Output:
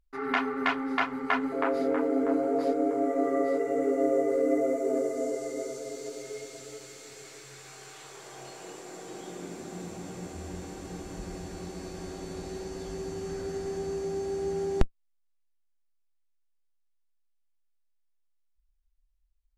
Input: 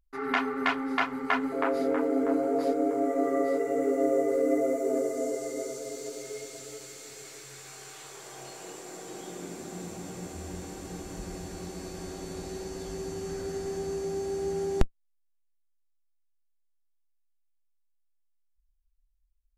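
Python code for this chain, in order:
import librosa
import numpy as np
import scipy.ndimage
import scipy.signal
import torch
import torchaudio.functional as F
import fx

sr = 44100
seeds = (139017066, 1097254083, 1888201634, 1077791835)

y = fx.high_shelf(x, sr, hz=8700.0, db=-9.0)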